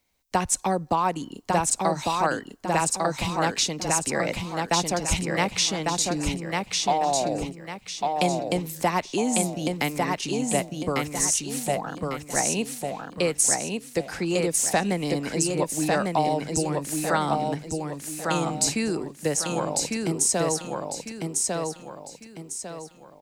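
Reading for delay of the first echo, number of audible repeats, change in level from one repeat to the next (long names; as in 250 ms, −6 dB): 1,150 ms, 4, −9.0 dB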